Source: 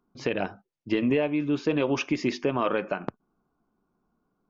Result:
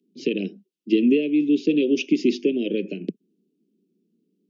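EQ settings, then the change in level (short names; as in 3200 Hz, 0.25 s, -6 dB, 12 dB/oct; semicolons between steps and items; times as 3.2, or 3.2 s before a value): steep high-pass 170 Hz 72 dB/oct; elliptic band-stop 400–2800 Hz, stop band 80 dB; high shelf 3800 Hz -8.5 dB; +8.0 dB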